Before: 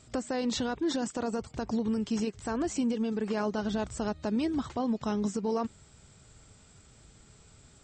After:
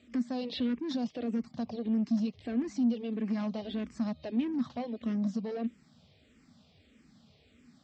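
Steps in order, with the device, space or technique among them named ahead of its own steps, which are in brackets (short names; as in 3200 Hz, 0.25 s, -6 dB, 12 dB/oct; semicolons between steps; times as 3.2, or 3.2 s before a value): barber-pole phaser into a guitar amplifier (endless phaser -1.6 Hz; soft clip -31 dBFS, distortion -14 dB; speaker cabinet 110–4600 Hz, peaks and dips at 120 Hz -9 dB, 240 Hz +10 dB, 390 Hz -7 dB, 920 Hz -9 dB, 1400 Hz -10 dB); gain +1.5 dB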